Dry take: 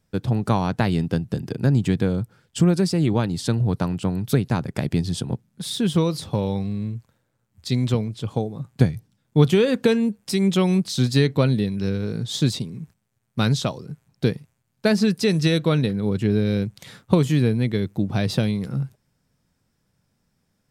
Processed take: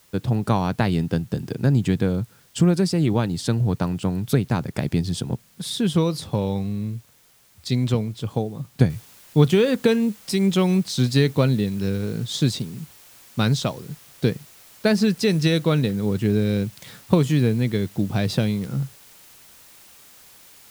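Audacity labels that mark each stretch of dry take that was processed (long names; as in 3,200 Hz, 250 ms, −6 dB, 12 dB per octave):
8.900000	8.900000	noise floor change −57 dB −49 dB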